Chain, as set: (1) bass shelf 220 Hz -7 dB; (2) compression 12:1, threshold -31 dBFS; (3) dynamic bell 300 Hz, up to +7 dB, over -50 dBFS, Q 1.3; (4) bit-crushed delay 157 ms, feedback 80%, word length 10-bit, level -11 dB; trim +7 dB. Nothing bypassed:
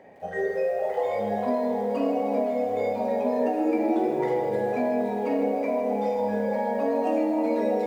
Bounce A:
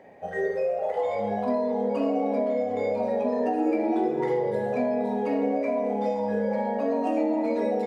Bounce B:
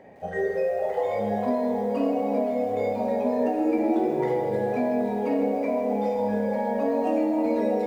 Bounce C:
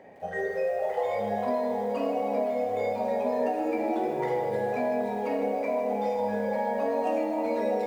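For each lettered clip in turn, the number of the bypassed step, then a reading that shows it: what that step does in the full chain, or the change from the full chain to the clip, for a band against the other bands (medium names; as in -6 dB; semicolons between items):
4, 125 Hz band +1.5 dB; 1, 125 Hz band +3.5 dB; 3, loudness change -2.5 LU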